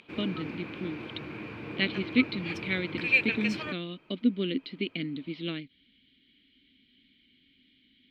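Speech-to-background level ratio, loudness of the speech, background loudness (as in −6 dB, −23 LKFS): 0.0 dB, −32.5 LKFS, −32.5 LKFS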